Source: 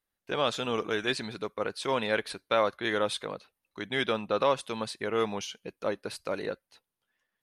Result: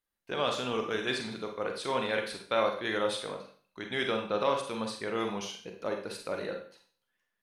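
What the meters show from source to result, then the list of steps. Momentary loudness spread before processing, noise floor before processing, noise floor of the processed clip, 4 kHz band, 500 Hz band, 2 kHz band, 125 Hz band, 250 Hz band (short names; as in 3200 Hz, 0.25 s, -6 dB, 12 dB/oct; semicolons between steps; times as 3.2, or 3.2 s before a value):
10 LU, under -85 dBFS, -83 dBFS, -1.5 dB, -2.0 dB, -2.0 dB, -2.5 dB, -1.5 dB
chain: Schroeder reverb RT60 0.47 s, combs from 32 ms, DRR 3 dB; gain -3.5 dB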